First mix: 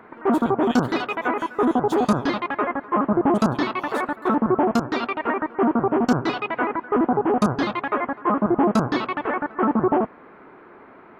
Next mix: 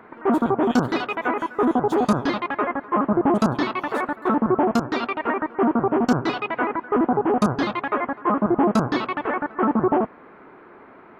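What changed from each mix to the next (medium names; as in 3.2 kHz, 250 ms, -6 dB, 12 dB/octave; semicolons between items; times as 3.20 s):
speech -3.5 dB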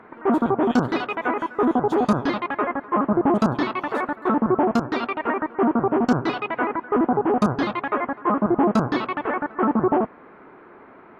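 master: add treble shelf 6.5 kHz -9.5 dB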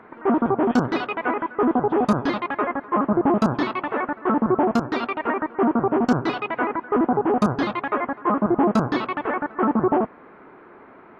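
speech: add low-pass 2.5 kHz 24 dB/octave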